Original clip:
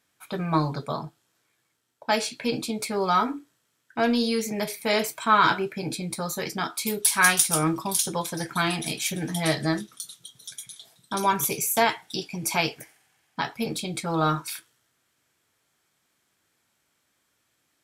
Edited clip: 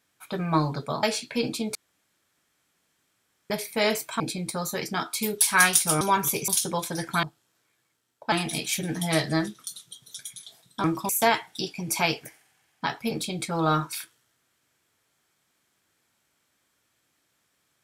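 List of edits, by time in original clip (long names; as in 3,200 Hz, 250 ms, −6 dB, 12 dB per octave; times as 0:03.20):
0:01.03–0:02.12: move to 0:08.65
0:02.84–0:04.59: fill with room tone
0:05.29–0:05.84: remove
0:07.65–0:07.90: swap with 0:11.17–0:11.64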